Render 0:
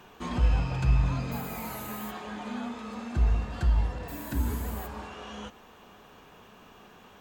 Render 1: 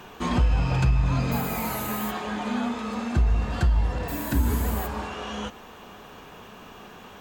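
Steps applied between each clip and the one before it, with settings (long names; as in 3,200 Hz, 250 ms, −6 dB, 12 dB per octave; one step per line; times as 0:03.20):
downward compressor 6 to 1, threshold −25 dBFS, peak gain reduction 8 dB
level +8 dB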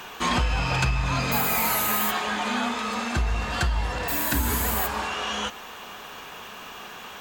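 tilt shelving filter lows −7 dB, about 650 Hz
level +2.5 dB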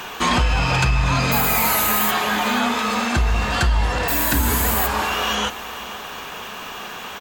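in parallel at −0.5 dB: brickwall limiter −19 dBFS, peak gain reduction 8.5 dB
on the sum: repeating echo 481 ms, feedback 38%, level −18 dB
level +1.5 dB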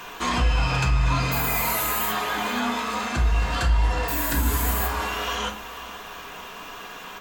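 convolution reverb RT60 0.35 s, pre-delay 3 ms, DRR 2 dB
level −8 dB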